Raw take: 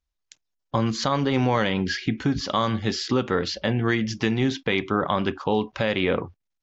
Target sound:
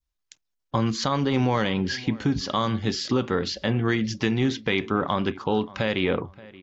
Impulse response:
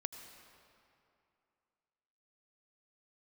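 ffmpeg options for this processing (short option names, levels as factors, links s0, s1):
-filter_complex "[0:a]equalizer=f=610:t=o:w=0.77:g=-2.5,asplit=2[s0][s1];[s1]adelay=577,lowpass=f=2300:p=1,volume=0.1,asplit=2[s2][s3];[s3]adelay=577,lowpass=f=2300:p=1,volume=0.32,asplit=2[s4][s5];[s5]adelay=577,lowpass=f=2300:p=1,volume=0.32[s6];[s2][s4][s6]amix=inputs=3:normalize=0[s7];[s0][s7]amix=inputs=2:normalize=0,adynamicequalizer=threshold=0.0112:dfrequency=1800:dqfactor=0.95:tfrequency=1800:tqfactor=0.95:attack=5:release=100:ratio=0.375:range=1.5:mode=cutabove:tftype=bell"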